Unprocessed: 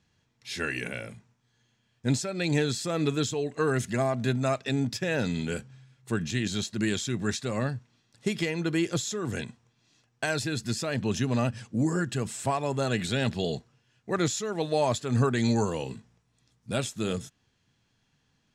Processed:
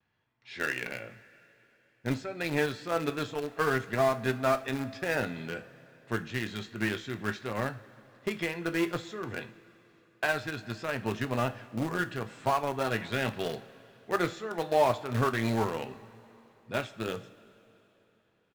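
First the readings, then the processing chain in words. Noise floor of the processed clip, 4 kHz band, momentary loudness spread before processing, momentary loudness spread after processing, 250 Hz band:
−69 dBFS, −5.5 dB, 9 LU, 11 LU, −5.5 dB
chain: low-pass filter 2,100 Hz 12 dB per octave
low-shelf EQ 390 Hz −12 dB
double-tracking delay 18 ms −11 dB
in parallel at −4 dB: centre clipping without the shift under −28 dBFS
on the sum: pitch vibrato 0.37 Hz 19 cents
coupled-rooms reverb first 0.29 s, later 3.4 s, from −18 dB, DRR 9 dB

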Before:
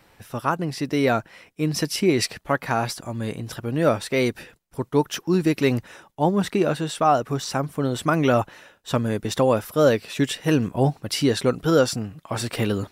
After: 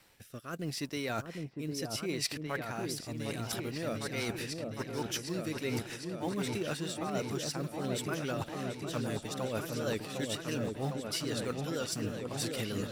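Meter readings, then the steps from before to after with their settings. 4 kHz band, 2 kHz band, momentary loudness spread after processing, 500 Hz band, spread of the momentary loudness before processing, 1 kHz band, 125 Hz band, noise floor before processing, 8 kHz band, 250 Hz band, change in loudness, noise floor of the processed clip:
−8.0 dB, −10.5 dB, 4 LU, −14.5 dB, 10 LU, −16.5 dB, −12.5 dB, −59 dBFS, −6.5 dB, −13.0 dB, −13.0 dB, −49 dBFS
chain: mu-law and A-law mismatch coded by A
high-shelf EQ 2,200 Hz +11 dB
reversed playback
downward compressor 6 to 1, threshold −33 dBFS, peak gain reduction 19.5 dB
reversed playback
rotating-speaker cabinet horn 0.75 Hz, later 6.3 Hz, at 0:03.75
echo whose low-pass opens from repeat to repeat 756 ms, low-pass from 750 Hz, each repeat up 2 octaves, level −3 dB

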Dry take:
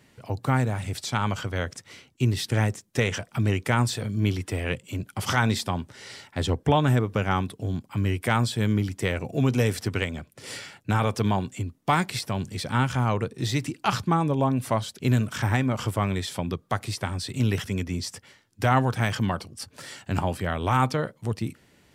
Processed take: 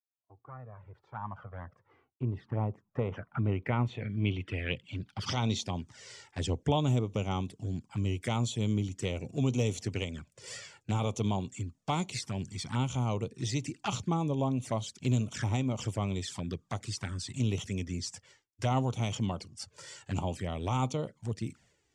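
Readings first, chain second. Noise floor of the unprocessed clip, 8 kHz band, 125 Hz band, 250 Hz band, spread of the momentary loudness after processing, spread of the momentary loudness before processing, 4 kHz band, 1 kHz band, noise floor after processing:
−61 dBFS, −5.0 dB, −6.5 dB, −6.5 dB, 13 LU, 10 LU, −6.5 dB, −10.0 dB, −76 dBFS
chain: fade in at the beginning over 3.42 s
notch filter 4,000 Hz, Q 22
downward expander −52 dBFS
flanger swept by the level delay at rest 3 ms, full sweep at −22.5 dBFS
low-pass filter sweep 1,100 Hz → 7,100 Hz, 0:02.99–0:05.94
level −6 dB

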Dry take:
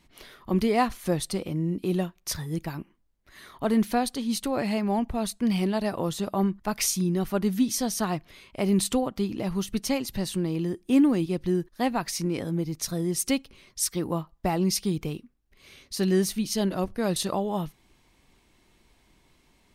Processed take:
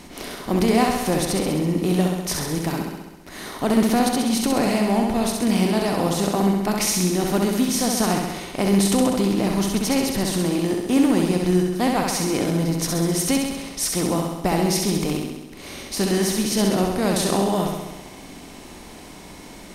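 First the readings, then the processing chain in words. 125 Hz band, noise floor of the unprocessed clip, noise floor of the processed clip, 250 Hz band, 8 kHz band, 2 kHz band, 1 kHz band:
+5.5 dB, −65 dBFS, −41 dBFS, +6.0 dB, +6.5 dB, +8.0 dB, +6.5 dB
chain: compressor on every frequency bin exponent 0.6
flutter between parallel walls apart 11.3 metres, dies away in 1.1 s

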